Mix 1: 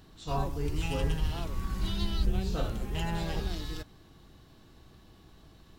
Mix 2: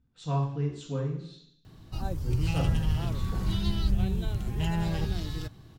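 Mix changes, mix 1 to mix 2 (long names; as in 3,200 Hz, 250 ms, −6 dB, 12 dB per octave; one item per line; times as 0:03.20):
background: entry +1.65 s
master: add parametric band 120 Hz +10.5 dB 1.2 octaves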